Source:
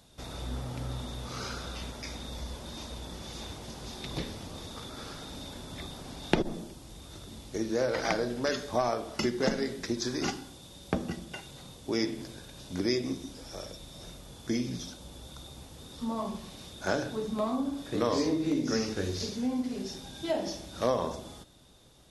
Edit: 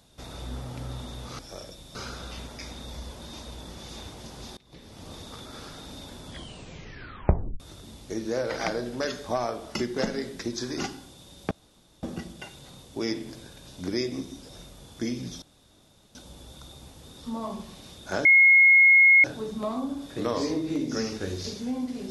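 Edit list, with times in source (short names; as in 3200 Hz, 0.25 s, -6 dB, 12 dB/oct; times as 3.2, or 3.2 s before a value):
4.01–4.52 fade in quadratic, from -23 dB
5.7 tape stop 1.34 s
10.95 insert room tone 0.52 s
13.41–13.97 move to 1.39
14.9 insert room tone 0.73 s
17 add tone 2160 Hz -12.5 dBFS 0.99 s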